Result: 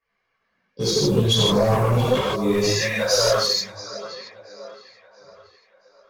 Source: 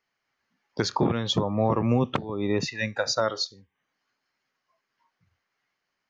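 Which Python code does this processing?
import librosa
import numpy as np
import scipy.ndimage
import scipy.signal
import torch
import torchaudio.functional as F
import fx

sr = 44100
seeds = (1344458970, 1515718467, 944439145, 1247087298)

p1 = x + fx.echo_thinned(x, sr, ms=679, feedback_pct=49, hz=240.0, wet_db=-16.5, dry=0)
p2 = fx.spec_box(p1, sr, start_s=0.64, length_s=0.59, low_hz=580.0, high_hz=2400.0, gain_db=-18)
p3 = fx.quant_float(p2, sr, bits=2)
p4 = p2 + F.gain(torch.from_numpy(p3), -10.0).numpy()
p5 = fx.high_shelf(p4, sr, hz=6200.0, db=11.5)
p6 = p5 + 0.47 * np.pad(p5, (int(1.8 * sr / 1000.0), 0))[:len(p5)]
p7 = fx.rev_gated(p6, sr, seeds[0], gate_ms=190, shape='flat', drr_db=-6.5)
p8 = 10.0 ** (-11.0 / 20.0) * np.tanh(p7 / 10.0 ** (-11.0 / 20.0))
p9 = fx.env_lowpass(p8, sr, base_hz=2400.0, full_db=-18.5)
y = fx.chorus_voices(p9, sr, voices=4, hz=0.88, base_ms=17, depth_ms=3.0, mix_pct=65)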